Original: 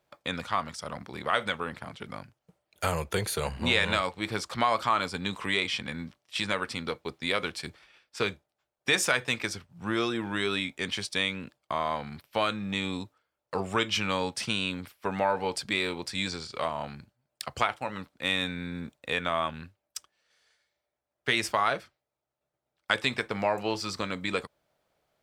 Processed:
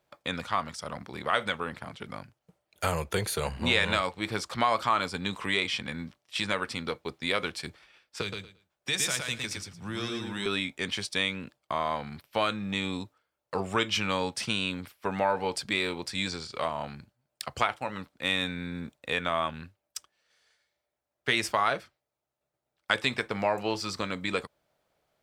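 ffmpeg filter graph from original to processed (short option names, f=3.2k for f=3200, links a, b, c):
-filter_complex "[0:a]asettb=1/sr,asplit=3[a][b][c];[a]atrim=end=8.214[d];[b]atrim=start=8.21:end=10.46,asetpts=PTS-STARTPTS,afade=t=in:d=0.004:c=qsin,afade=t=out:st=2.246:d=0.004:c=qsin,acrossover=split=180|3000[e][f][g];[f]acompressor=threshold=-52dB:ratio=1.5:attack=3.2:release=140:knee=2.83:detection=peak[h];[e][h][g]amix=inputs=3:normalize=0,aecho=1:1:113|226|339:0.668|0.12|0.0217,atrim=end_sample=99225[i];[c]atrim=start=10.456[j];[d][i]acrossfade=d=0.004:c1=hsin:c2=qsin[k];[k][j]acrossfade=d=0.004:c1=qsin:c2=hsin"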